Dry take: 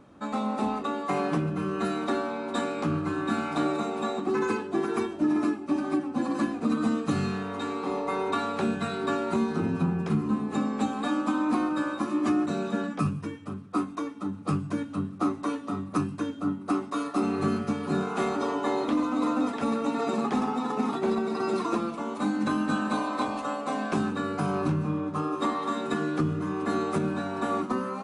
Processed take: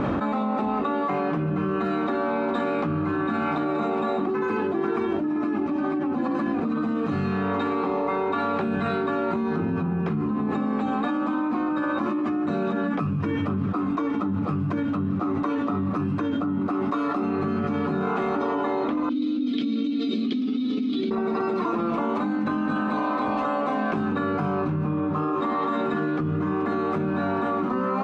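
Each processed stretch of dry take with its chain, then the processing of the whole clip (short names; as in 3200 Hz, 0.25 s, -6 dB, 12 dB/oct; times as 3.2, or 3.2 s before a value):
19.09–21.11 vowel filter i + resonant high shelf 2900 Hz +13.5 dB, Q 3
whole clip: LPF 2600 Hz 12 dB/oct; fast leveller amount 100%; gain -3.5 dB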